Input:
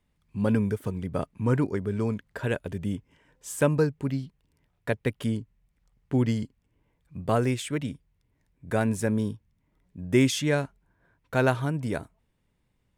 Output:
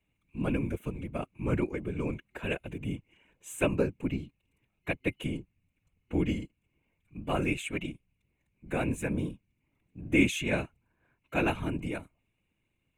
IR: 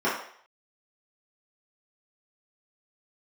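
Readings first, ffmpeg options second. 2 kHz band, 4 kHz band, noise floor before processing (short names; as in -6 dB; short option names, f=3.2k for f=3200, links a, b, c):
-0.5 dB, -3.5 dB, -73 dBFS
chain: -af "afftfilt=real='hypot(re,im)*cos(2*PI*random(0))':imag='hypot(re,im)*sin(2*PI*random(1))':win_size=512:overlap=0.75,superequalizer=6b=1.41:12b=3.55:14b=0.282"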